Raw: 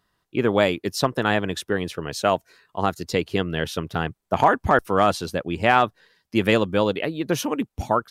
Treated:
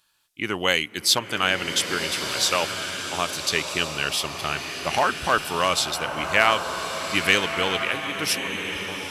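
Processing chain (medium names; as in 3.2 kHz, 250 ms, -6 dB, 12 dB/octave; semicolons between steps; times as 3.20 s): fade out at the end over 1.11 s; treble shelf 2 kHz +9.5 dB; tape speed -11%; tilt shelf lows -6.5 dB, about 1.2 kHz; swelling reverb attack 1390 ms, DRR 5 dB; trim -4 dB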